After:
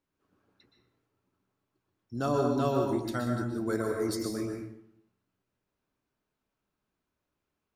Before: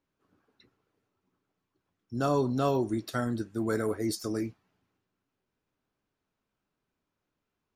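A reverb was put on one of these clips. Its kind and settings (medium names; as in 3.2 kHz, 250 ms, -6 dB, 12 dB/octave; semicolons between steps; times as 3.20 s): plate-style reverb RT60 0.73 s, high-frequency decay 0.65×, pre-delay 110 ms, DRR 2 dB; trim -2.5 dB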